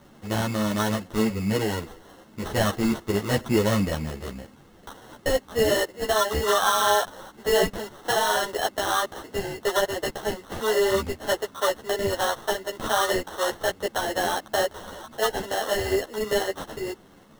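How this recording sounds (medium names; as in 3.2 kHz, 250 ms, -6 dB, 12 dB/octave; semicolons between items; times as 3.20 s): aliases and images of a low sample rate 2.4 kHz, jitter 0%; a shimmering, thickened sound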